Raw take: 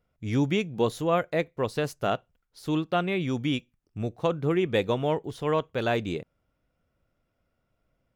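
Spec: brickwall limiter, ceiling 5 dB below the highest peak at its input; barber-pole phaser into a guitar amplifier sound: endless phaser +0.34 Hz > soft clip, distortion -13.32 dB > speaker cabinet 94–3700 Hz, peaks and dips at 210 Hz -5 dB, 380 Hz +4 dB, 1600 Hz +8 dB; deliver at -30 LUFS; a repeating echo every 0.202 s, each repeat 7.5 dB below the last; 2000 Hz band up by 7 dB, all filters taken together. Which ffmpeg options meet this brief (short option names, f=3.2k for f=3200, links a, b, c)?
-filter_complex "[0:a]equalizer=f=2k:t=o:g=4.5,alimiter=limit=-16.5dB:level=0:latency=1,aecho=1:1:202|404|606|808|1010:0.422|0.177|0.0744|0.0312|0.0131,asplit=2[a][b];[b]afreqshift=0.34[c];[a][c]amix=inputs=2:normalize=1,asoftclip=threshold=-26dB,highpass=94,equalizer=f=210:t=q:w=4:g=-5,equalizer=f=380:t=q:w=4:g=4,equalizer=f=1.6k:t=q:w=4:g=8,lowpass=f=3.7k:w=0.5412,lowpass=f=3.7k:w=1.3066,volume=3.5dB"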